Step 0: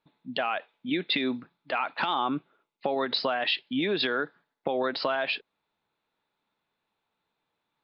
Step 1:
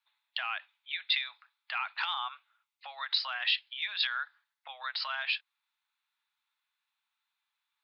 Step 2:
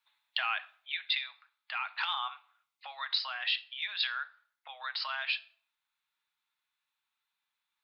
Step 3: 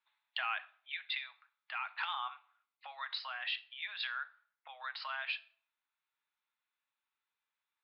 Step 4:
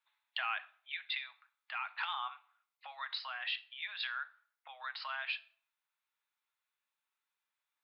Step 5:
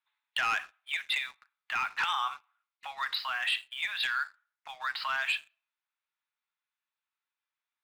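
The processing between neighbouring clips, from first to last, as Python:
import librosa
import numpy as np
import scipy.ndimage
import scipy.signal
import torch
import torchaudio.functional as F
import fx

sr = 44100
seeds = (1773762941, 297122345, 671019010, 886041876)

y1 = scipy.signal.sosfilt(scipy.signal.bessel(8, 1600.0, 'highpass', norm='mag', fs=sr, output='sos'), x)
y2 = fx.rider(y1, sr, range_db=3, speed_s=0.5)
y2 = fx.room_shoebox(y2, sr, seeds[0], volume_m3=810.0, walls='furnished', distance_m=0.53)
y3 = fx.bass_treble(y2, sr, bass_db=-7, treble_db=-13)
y3 = F.gain(torch.from_numpy(y3), -3.0).numpy()
y4 = scipy.signal.sosfilt(scipy.signal.butter(2, 450.0, 'highpass', fs=sr, output='sos'), y3)
y5 = fx.bandpass_edges(y4, sr, low_hz=730.0, high_hz=4300.0)
y5 = fx.leveller(y5, sr, passes=2)
y5 = F.gain(torch.from_numpy(y5), 2.5).numpy()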